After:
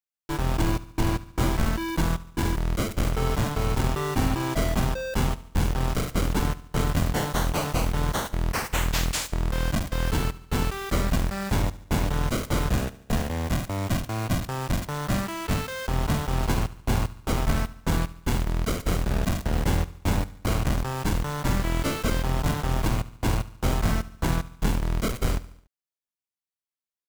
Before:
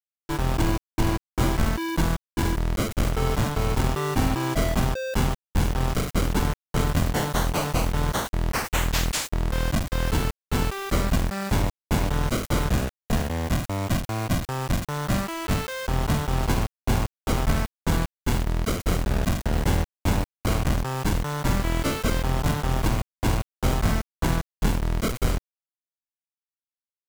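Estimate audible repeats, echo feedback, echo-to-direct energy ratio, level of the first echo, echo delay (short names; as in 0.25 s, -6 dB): 4, 53%, -16.5 dB, -18.0 dB, 72 ms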